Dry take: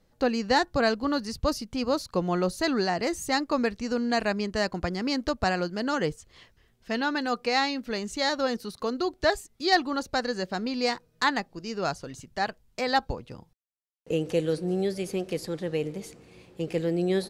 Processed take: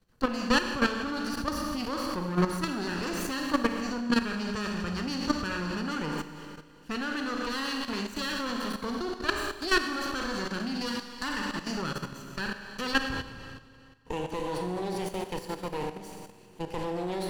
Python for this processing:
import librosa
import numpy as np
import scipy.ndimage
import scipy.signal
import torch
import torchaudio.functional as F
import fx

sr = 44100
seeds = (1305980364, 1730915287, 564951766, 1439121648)

y = fx.lower_of_two(x, sr, delay_ms=0.69)
y = fx.rev_schroeder(y, sr, rt60_s=1.8, comb_ms=30, drr_db=2.0)
y = fx.level_steps(y, sr, step_db=11)
y = y * 10.0 ** (1.0 / 20.0)